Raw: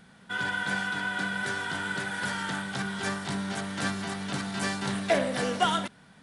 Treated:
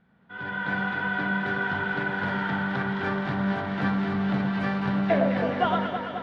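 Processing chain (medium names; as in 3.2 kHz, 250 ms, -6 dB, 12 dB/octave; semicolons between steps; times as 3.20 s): treble shelf 4.3 kHz -8.5 dB; level rider gain up to 13 dB; distance through air 330 m; on a send: echo whose repeats swap between lows and highs 107 ms, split 1.2 kHz, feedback 85%, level -4.5 dB; on the sum: trim -8.5 dB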